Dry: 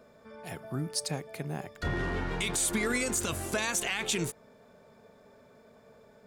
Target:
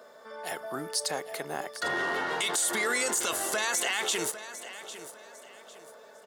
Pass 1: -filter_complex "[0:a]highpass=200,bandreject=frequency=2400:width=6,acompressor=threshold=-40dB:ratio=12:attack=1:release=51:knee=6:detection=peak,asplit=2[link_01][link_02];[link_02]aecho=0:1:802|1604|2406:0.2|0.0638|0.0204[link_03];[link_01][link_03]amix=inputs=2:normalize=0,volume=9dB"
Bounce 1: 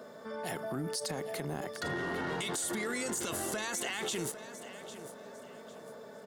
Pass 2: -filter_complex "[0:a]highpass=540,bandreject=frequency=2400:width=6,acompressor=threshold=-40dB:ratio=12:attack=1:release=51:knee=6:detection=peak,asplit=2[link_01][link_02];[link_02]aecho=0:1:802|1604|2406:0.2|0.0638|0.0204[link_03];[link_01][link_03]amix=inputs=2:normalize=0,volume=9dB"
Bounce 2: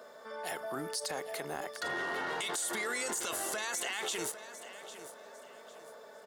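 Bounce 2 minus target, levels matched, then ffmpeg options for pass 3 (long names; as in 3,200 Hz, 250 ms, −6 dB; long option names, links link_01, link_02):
downward compressor: peak gain reduction +8 dB
-filter_complex "[0:a]highpass=540,bandreject=frequency=2400:width=6,acompressor=threshold=-31.5dB:ratio=12:attack=1:release=51:knee=6:detection=peak,asplit=2[link_01][link_02];[link_02]aecho=0:1:802|1604|2406:0.2|0.0638|0.0204[link_03];[link_01][link_03]amix=inputs=2:normalize=0,volume=9dB"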